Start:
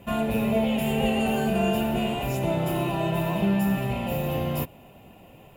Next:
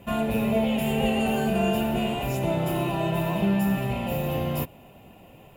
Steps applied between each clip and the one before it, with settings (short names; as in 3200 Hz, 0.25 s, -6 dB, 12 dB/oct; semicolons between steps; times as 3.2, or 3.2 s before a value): nothing audible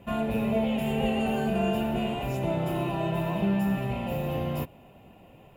high shelf 4500 Hz -7.5 dB; gain -2.5 dB